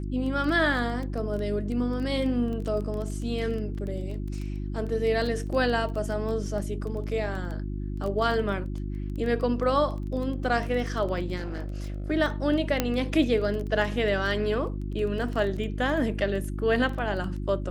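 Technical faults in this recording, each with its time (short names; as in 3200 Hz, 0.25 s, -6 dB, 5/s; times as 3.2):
crackle 13/s -32 dBFS
hum 50 Hz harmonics 7 -32 dBFS
11.36–12.11 clipped -29 dBFS
12.8 pop -8 dBFS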